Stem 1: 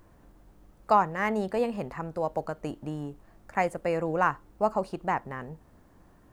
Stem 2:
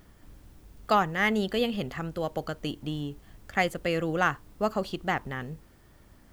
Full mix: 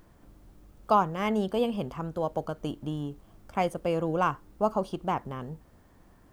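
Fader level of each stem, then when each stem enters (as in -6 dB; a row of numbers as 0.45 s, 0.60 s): -1.5 dB, -8.0 dB; 0.00 s, 0.00 s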